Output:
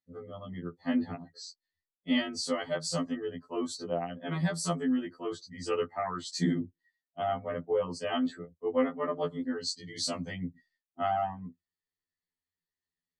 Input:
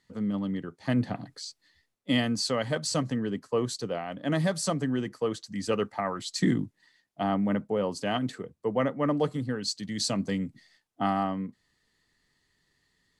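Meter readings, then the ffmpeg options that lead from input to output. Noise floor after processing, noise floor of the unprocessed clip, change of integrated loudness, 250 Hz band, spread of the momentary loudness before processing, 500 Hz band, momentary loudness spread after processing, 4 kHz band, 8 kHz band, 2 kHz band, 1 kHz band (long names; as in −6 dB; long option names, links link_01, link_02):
below −85 dBFS, −76 dBFS, −3.5 dB, −4.0 dB, 8 LU, −2.5 dB, 12 LU, −3.5 dB, −3.5 dB, −3.5 dB, −2.0 dB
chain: -af "afftdn=noise_reduction=22:noise_floor=-48,afftfilt=real='re*2*eq(mod(b,4),0)':imag='im*2*eq(mod(b,4),0)':win_size=2048:overlap=0.75,volume=-1dB"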